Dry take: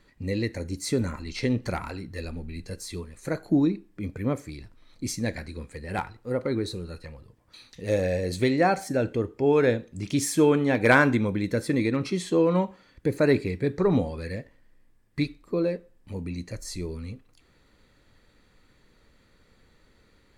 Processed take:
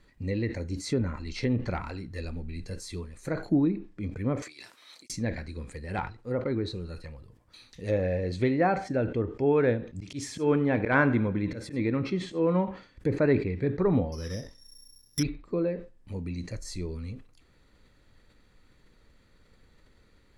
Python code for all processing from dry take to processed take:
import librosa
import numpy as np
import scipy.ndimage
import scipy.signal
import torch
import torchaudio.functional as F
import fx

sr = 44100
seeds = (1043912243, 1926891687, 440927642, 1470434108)

y = fx.chain(x, sr, fx.highpass(hz=640.0, slope=12),
    fx.high_shelf(hz=2600.0, db=8.5),
    fx.over_compress(threshold_db=-49.0, ratio=-0.5), at=(4.42, 5.1))
y = fx.chain(y, sr, fx.auto_swell(attack_ms=126.0),
    fx.echo_feedback(ms=97, feedback_pct=45, wet_db=-18.5), at=(9.91, 12.53))
y = fx.chain(y, sr, fx.high_shelf(hz=2600.0, db=-8.0),
    fx.resample_bad(factor=8, down='none', up='zero_stuff'), at=(14.12, 15.23))
y = fx.env_lowpass_down(y, sr, base_hz=2400.0, full_db=-22.5)
y = fx.low_shelf(y, sr, hz=110.0, db=5.0)
y = fx.sustainer(y, sr, db_per_s=130.0)
y = y * 10.0 ** (-3.0 / 20.0)